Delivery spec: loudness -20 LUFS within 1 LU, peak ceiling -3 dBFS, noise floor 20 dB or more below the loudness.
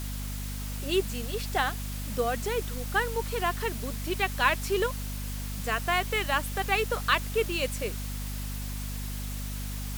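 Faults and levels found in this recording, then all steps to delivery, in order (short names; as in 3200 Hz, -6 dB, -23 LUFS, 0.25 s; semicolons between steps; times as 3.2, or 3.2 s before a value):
hum 50 Hz; harmonics up to 250 Hz; hum level -32 dBFS; noise floor -35 dBFS; noise floor target -50 dBFS; loudness -30.0 LUFS; peak -9.0 dBFS; loudness target -20.0 LUFS
-> de-hum 50 Hz, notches 5; denoiser 15 dB, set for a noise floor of -35 dBFS; gain +10 dB; limiter -3 dBFS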